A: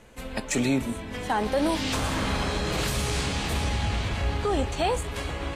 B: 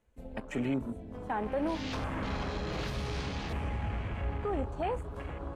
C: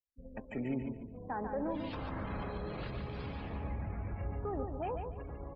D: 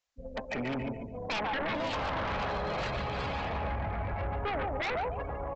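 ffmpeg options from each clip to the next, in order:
-af "afwtdn=0.0178,equalizer=f=4000:t=o:w=2.4:g=-3.5,volume=0.447"
-af "afftdn=nr=31:nf=-42,aecho=1:1:144|288|432:0.501|0.135|0.0365,volume=0.562"
-af "lowshelf=f=470:t=q:w=1.5:g=-8,aresample=16000,aeval=exprs='0.0447*sin(PI/2*3.98*val(0)/0.0447)':c=same,aresample=44100,volume=0.794"

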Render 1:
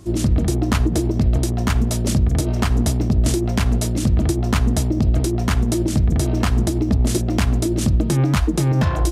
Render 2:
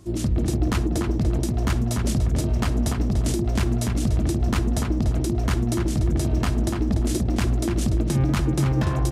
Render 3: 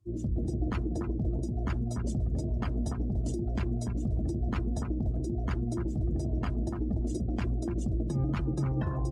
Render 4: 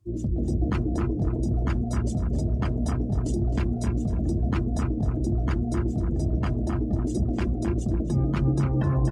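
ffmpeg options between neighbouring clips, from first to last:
-filter_complex "[0:a]asplit=2[s0][s1];[s1]adelay=292,lowpass=f=2700:p=1,volume=0.631,asplit=2[s2][s3];[s3]adelay=292,lowpass=f=2700:p=1,volume=0.23,asplit=2[s4][s5];[s5]adelay=292,lowpass=f=2700:p=1,volume=0.23[s6];[s0][s2][s4][s6]amix=inputs=4:normalize=0,volume=0.531"
-af "afftdn=nr=23:nf=-32,volume=0.376"
-filter_complex "[0:a]asplit=2[s0][s1];[s1]adelay=262,lowpass=f=1700:p=1,volume=0.708,asplit=2[s2][s3];[s3]adelay=262,lowpass=f=1700:p=1,volume=0.17,asplit=2[s4][s5];[s5]adelay=262,lowpass=f=1700:p=1,volume=0.17[s6];[s0][s2][s4][s6]amix=inputs=4:normalize=0,volume=1.68"

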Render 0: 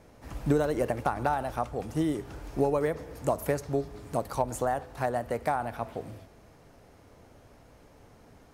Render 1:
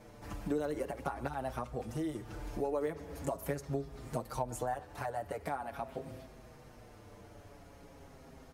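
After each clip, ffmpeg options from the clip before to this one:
-filter_complex "[0:a]acompressor=threshold=0.00891:ratio=2,asplit=2[s0][s1];[s1]adelay=6.3,afreqshift=-0.43[s2];[s0][s2]amix=inputs=2:normalize=1,volume=1.58"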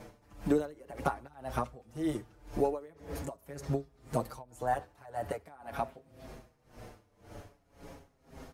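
-af "aeval=exprs='val(0)*pow(10,-24*(0.5-0.5*cos(2*PI*1.9*n/s))/20)':c=same,volume=2.24"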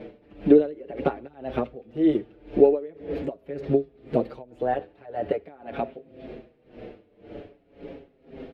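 -af "firequalizer=gain_entry='entry(110,0);entry(200,9);entry(400,15);entry(990,-4);entry(1600,2);entry(2600,8);entry(3700,3);entry(6100,-19);entry(9400,-24)':delay=0.05:min_phase=1"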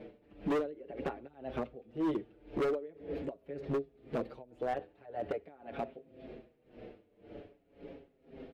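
-af "asoftclip=type=hard:threshold=0.106,volume=0.376"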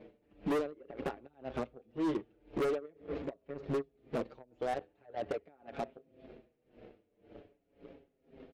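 -af "aresample=16000,aresample=44100,aeval=exprs='0.0422*(cos(1*acos(clip(val(0)/0.0422,-1,1)))-cos(1*PI/2))+0.00335*(cos(7*acos(clip(val(0)/0.0422,-1,1)))-cos(7*PI/2))':c=same"

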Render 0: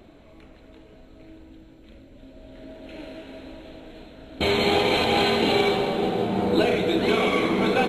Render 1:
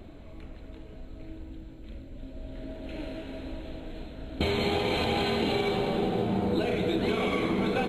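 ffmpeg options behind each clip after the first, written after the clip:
-af "lowshelf=f=160:g=10.5,bandreject=f=5700:w=11,acompressor=threshold=0.0708:ratio=6,volume=0.891"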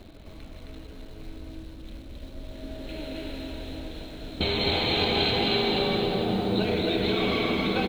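-filter_complex "[0:a]lowpass=f=4400:t=q:w=3,asplit=2[s0][s1];[s1]acrusher=bits=6:mix=0:aa=0.000001,volume=0.266[s2];[s0][s2]amix=inputs=2:normalize=0,aecho=1:1:157.4|265.3:0.282|0.794,volume=0.708"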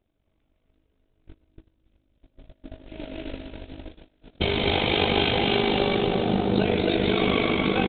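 -af "agate=range=0.0316:threshold=0.02:ratio=16:detection=peak,aresample=8000,aresample=44100,tremolo=f=50:d=0.667,volume=2"

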